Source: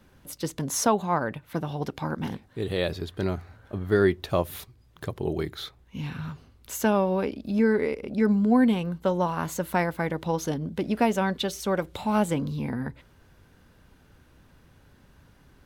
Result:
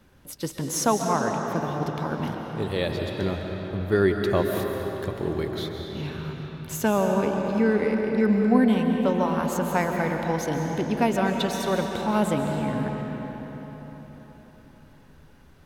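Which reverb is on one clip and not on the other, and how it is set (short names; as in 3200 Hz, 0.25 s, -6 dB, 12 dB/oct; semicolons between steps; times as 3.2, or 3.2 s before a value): digital reverb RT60 4.6 s, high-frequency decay 0.7×, pre-delay 0.1 s, DRR 2 dB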